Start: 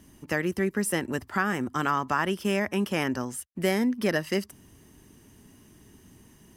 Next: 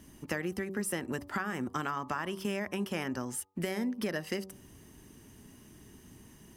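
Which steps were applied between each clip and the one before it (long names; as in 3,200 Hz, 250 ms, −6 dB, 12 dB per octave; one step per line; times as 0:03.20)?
downward compressor, threshold −30 dBFS, peak gain reduction 10 dB
hum removal 95.58 Hz, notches 13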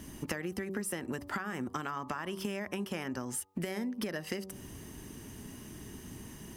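downward compressor, threshold −41 dBFS, peak gain reduction 12.5 dB
level +7.5 dB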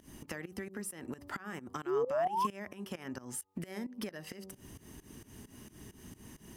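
sound drawn into the spectrogram rise, 0:01.86–0:02.47, 340–1,100 Hz −26 dBFS
fake sidechain pumping 132 BPM, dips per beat 2, −19 dB, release 177 ms
level −3.5 dB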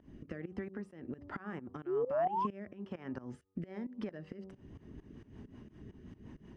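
rotating-speaker cabinet horn 1.2 Hz, later 5.5 Hz, at 0:04.13
head-to-tape spacing loss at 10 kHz 37 dB
level +3 dB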